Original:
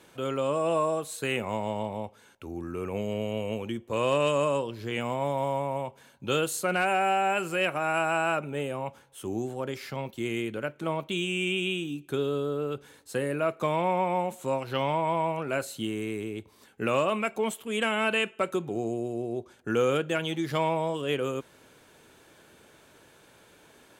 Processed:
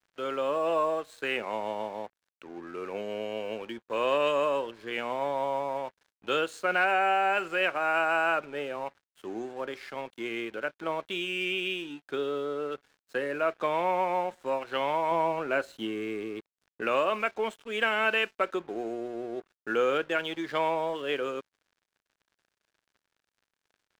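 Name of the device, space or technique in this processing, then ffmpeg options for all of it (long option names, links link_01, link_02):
pocket radio on a weak battery: -filter_complex "[0:a]highpass=340,lowpass=4300,aeval=exprs='sgn(val(0))*max(abs(val(0))-0.00266,0)':channel_layout=same,equalizer=frequency=1600:width_type=o:width=0.48:gain=5,asettb=1/sr,asplit=3[link_01][link_02][link_03];[link_01]atrim=end=15.114[link_04];[link_02]atrim=start=15.11:end=16.82,asetpts=PTS-STARTPTS,afade=type=in:duration=0.004:curve=qsin,afade=type=out:start_time=1.706:duration=0.004:curve=qsin,lowshelf=frequency=500:gain=5.5[link_05];[link_03]atrim=start=16.816[link_06];[link_04][link_05]acrossfade=duration=0.004:curve1=hsin:curve2=qsin[link_07];[link_07][link_06]acrossfade=duration=0.004:curve1=qsin:curve2=hsin"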